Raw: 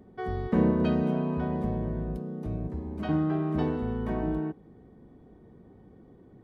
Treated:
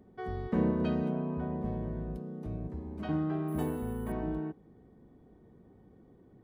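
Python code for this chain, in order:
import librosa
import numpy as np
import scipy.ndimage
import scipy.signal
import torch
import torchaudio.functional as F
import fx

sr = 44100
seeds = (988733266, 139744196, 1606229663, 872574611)

y = fx.high_shelf(x, sr, hz=fx.line((1.08, 3100.0), (1.64, 2400.0)), db=-12.0, at=(1.08, 1.64), fade=0.02)
y = fx.resample_bad(y, sr, factor=4, down='filtered', up='hold', at=(3.48, 4.12))
y = y * librosa.db_to_amplitude(-5.0)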